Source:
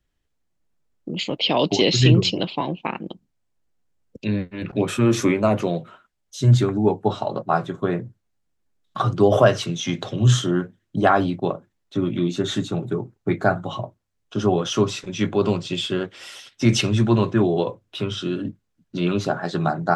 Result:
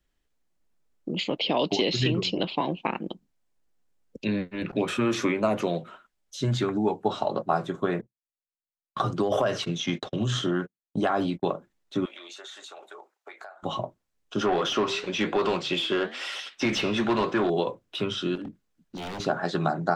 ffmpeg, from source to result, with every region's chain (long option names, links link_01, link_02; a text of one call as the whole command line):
ffmpeg -i in.wav -filter_complex "[0:a]asettb=1/sr,asplit=3[link_01][link_02][link_03];[link_01]atrim=end=8.014[link_04];[link_02]atrim=start=8.01:end=11.45,asetpts=PTS-STARTPTS,afade=type=in:duration=0.004:curve=qsin,afade=type=out:start_time=3.436:duration=0.004:curve=qsin,agate=range=-38dB:threshold=-32dB:ratio=16:release=100:detection=peak,acompressor=threshold=-15dB:ratio=6:attack=3.2:release=140:knee=1:detection=peak[link_05];[link_03]atrim=start=11.446[link_06];[link_04][link_05]acrossfade=duration=0.004:curve1=hsin:curve2=qsin[link_07];[link_07][link_06]acrossfade=duration=0.004:curve1=qsin:curve2=hsin,asettb=1/sr,asplit=3[link_08][link_09][link_10];[link_08]atrim=end=12.054[link_11];[link_09]atrim=start=12.05:end=13.63,asetpts=PTS-STARTPTS,afade=type=in:duration=0.004:curve=qsin,afade=type=out:start_time=1.576:duration=0.004:curve=qsin,highpass=frequency=640:width=0.5412,highpass=frequency=640:width=1.3066,acompressor=threshold=-39dB:ratio=16:attack=3.2:release=140:knee=1:detection=peak[link_12];[link_10]atrim=start=13.626[link_13];[link_11][link_12]acrossfade=duration=0.004:curve1=hsin:curve2=qsin[link_14];[link_14][link_13]acrossfade=duration=0.004:curve1=qsin:curve2=hsin,asettb=1/sr,asplit=3[link_15][link_16][link_17];[link_15]atrim=end=14.414[link_18];[link_16]atrim=start=14.41:end=17.5,asetpts=PTS-STARTPTS,afade=type=in:duration=0.004:curve=qsin,afade=type=out:start_time=3.086:duration=0.004:curve=qsin,flanger=delay=6.4:depth=7.6:regen=-82:speed=1:shape=sinusoidal,asplit=2[link_19][link_20];[link_20]highpass=frequency=720:poles=1,volume=19dB,asoftclip=type=tanh:threshold=-10dB[link_21];[link_19][link_21]amix=inputs=2:normalize=0,lowpass=frequency=3300:poles=1,volume=-6dB[link_22];[link_17]atrim=start=17.496[link_23];[link_18][link_22]acrossfade=duration=0.004:curve1=hsin:curve2=qsin[link_24];[link_24][link_23]acrossfade=duration=0.004:curve1=qsin:curve2=hsin,asettb=1/sr,asplit=3[link_25][link_26][link_27];[link_25]atrim=end=18.354[link_28];[link_26]atrim=start=18.35:end=19.2,asetpts=PTS-STARTPTS,afade=type=in:duration=0.004:curve=qsin,afade=type=out:start_time=0.846:duration=0.004:curve=qsin,aeval=exprs='0.0794*(abs(mod(val(0)/0.0794+3,4)-2)-1)':channel_layout=same,acompressor=threshold=-37dB:ratio=2:attack=3.2:release=140:knee=1:detection=peak[link_29];[link_27]atrim=start=19.196[link_30];[link_28][link_29]acrossfade=duration=0.004:curve1=hsin:curve2=qsin[link_31];[link_31][link_30]acrossfade=duration=0.004:curve1=qsin:curve2=hsin,equalizer=frequency=99:width_type=o:width=1:gain=-10,acrossover=split=810|4900[link_32][link_33][link_34];[link_32]acompressor=threshold=-23dB:ratio=4[link_35];[link_33]acompressor=threshold=-28dB:ratio=4[link_36];[link_34]acompressor=threshold=-48dB:ratio=4[link_37];[link_35][link_36][link_37]amix=inputs=3:normalize=0" out.wav